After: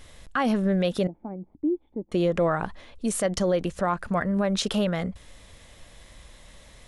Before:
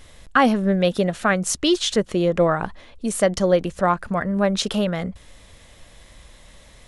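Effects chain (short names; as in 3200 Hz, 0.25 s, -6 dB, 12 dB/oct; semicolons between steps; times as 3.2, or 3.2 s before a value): 1.07–2.12 vocal tract filter u; limiter -13 dBFS, peak gain reduction 9 dB; gain -2 dB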